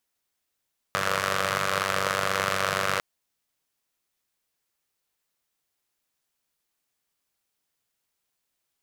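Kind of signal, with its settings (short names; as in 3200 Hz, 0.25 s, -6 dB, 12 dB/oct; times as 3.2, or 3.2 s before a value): four-cylinder engine model, steady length 2.05 s, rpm 2900, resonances 150/560/1200 Hz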